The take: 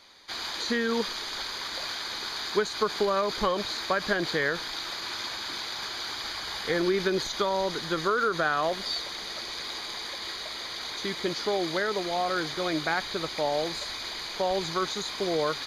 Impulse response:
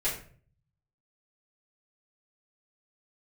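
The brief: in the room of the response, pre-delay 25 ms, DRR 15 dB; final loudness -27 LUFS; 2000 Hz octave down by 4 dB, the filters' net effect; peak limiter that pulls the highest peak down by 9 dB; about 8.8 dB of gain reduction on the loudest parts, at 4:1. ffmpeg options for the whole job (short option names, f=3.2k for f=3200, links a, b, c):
-filter_complex "[0:a]equalizer=f=2k:t=o:g=-5.5,acompressor=threshold=-32dB:ratio=4,alimiter=level_in=5dB:limit=-24dB:level=0:latency=1,volume=-5dB,asplit=2[a][b];[1:a]atrim=start_sample=2205,adelay=25[c];[b][c]afir=irnorm=-1:irlink=0,volume=-22.5dB[d];[a][d]amix=inputs=2:normalize=0,volume=10dB"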